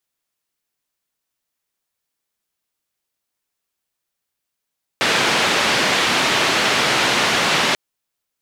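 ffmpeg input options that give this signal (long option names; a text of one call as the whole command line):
ffmpeg -f lavfi -i "anoisesrc=color=white:duration=2.74:sample_rate=44100:seed=1,highpass=frequency=150,lowpass=frequency=3300,volume=-4.6dB" out.wav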